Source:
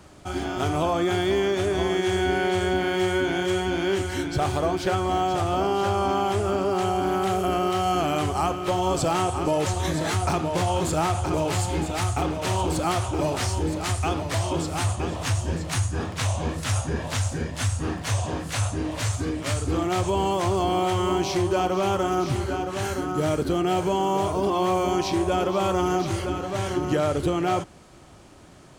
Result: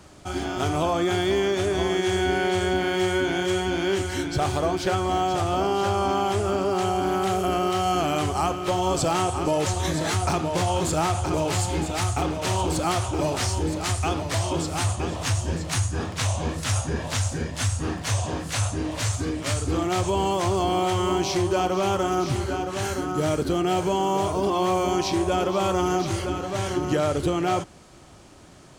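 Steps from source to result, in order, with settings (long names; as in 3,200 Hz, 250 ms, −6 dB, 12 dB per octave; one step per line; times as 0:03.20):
parametric band 5,900 Hz +3 dB 1.5 octaves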